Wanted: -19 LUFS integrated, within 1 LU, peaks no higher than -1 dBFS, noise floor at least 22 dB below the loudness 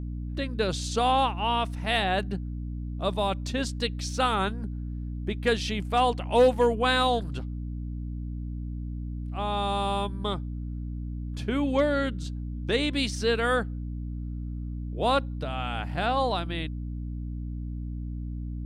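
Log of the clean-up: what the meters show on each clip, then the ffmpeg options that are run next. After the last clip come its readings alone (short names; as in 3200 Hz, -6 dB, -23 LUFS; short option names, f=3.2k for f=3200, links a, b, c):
hum 60 Hz; harmonics up to 300 Hz; hum level -31 dBFS; loudness -28.5 LUFS; peak -11.5 dBFS; loudness target -19.0 LUFS
-> -af "bandreject=f=60:t=h:w=6,bandreject=f=120:t=h:w=6,bandreject=f=180:t=h:w=6,bandreject=f=240:t=h:w=6,bandreject=f=300:t=h:w=6"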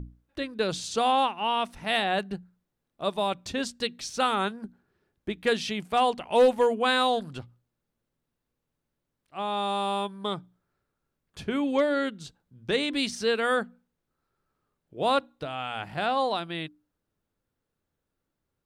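hum none; loudness -27.5 LUFS; peak -12.0 dBFS; loudness target -19.0 LUFS
-> -af "volume=8.5dB"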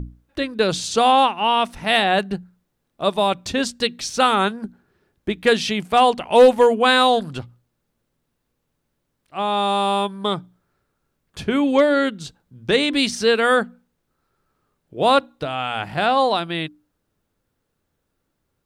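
loudness -19.0 LUFS; peak -3.5 dBFS; noise floor -75 dBFS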